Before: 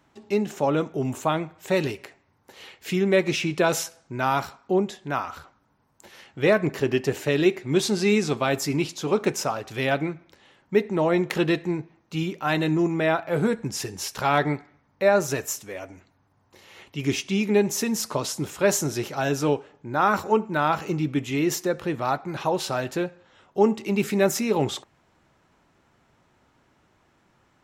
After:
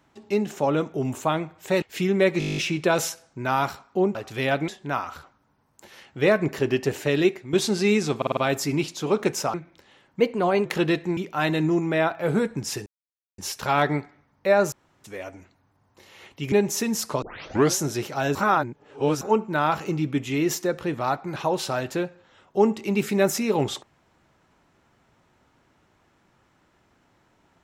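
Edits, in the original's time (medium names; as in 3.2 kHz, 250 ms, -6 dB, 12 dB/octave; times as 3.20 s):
1.82–2.74 s: delete
3.31 s: stutter 0.02 s, 10 plays
7.45–7.74 s: fade out, to -10.5 dB
8.38 s: stutter 0.05 s, 5 plays
9.55–10.08 s: move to 4.89 s
10.74–11.25 s: speed 113%
11.77–12.25 s: delete
13.94 s: insert silence 0.52 s
15.28–15.60 s: room tone
17.08–17.53 s: delete
18.23 s: tape start 0.57 s
19.36–20.22 s: reverse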